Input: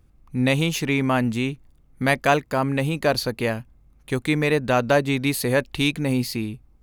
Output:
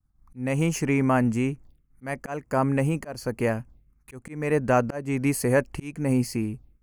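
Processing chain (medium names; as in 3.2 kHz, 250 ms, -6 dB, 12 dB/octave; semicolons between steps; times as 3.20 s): touch-sensitive phaser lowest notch 420 Hz, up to 3.7 kHz, full sweep at -26 dBFS; expander -47 dBFS; slow attack 318 ms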